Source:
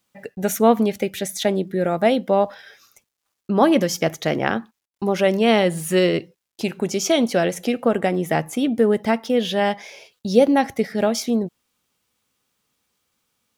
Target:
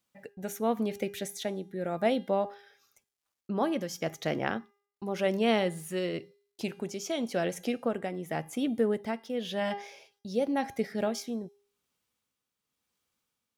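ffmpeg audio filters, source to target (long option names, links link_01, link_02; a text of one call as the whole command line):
ffmpeg -i in.wav -af "tremolo=f=0.92:d=0.49,bandreject=frequency=404.4:width_type=h:width=4,bandreject=frequency=808.8:width_type=h:width=4,bandreject=frequency=1213.2:width_type=h:width=4,bandreject=frequency=1617.6:width_type=h:width=4,bandreject=frequency=2022:width_type=h:width=4,bandreject=frequency=2426.4:width_type=h:width=4,bandreject=frequency=2830.8:width_type=h:width=4,bandreject=frequency=3235.2:width_type=h:width=4,bandreject=frequency=3639.6:width_type=h:width=4,bandreject=frequency=4044:width_type=h:width=4,bandreject=frequency=4448.4:width_type=h:width=4,bandreject=frequency=4852.8:width_type=h:width=4,bandreject=frequency=5257.2:width_type=h:width=4,bandreject=frequency=5661.6:width_type=h:width=4,bandreject=frequency=6066:width_type=h:width=4,bandreject=frequency=6470.4:width_type=h:width=4,bandreject=frequency=6874.8:width_type=h:width=4,bandreject=frequency=7279.2:width_type=h:width=4,bandreject=frequency=7683.6:width_type=h:width=4,bandreject=frequency=8088:width_type=h:width=4,bandreject=frequency=8492.4:width_type=h:width=4,bandreject=frequency=8896.8:width_type=h:width=4,bandreject=frequency=9301.2:width_type=h:width=4,bandreject=frequency=9705.6:width_type=h:width=4,bandreject=frequency=10110:width_type=h:width=4,bandreject=frequency=10514.4:width_type=h:width=4,bandreject=frequency=10918.8:width_type=h:width=4,bandreject=frequency=11323.2:width_type=h:width=4,bandreject=frequency=11727.6:width_type=h:width=4,bandreject=frequency=12132:width_type=h:width=4,bandreject=frequency=12536.4:width_type=h:width=4,bandreject=frequency=12940.8:width_type=h:width=4,volume=-9dB" out.wav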